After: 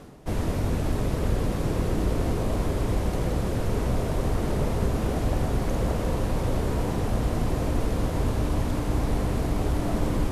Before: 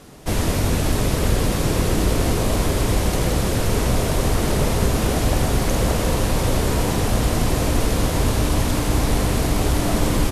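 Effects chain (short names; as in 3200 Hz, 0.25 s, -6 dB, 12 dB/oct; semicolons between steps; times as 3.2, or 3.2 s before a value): high shelf 2000 Hz -10.5 dB; reverse; upward compressor, threshold -23 dBFS; reverse; gain -5.5 dB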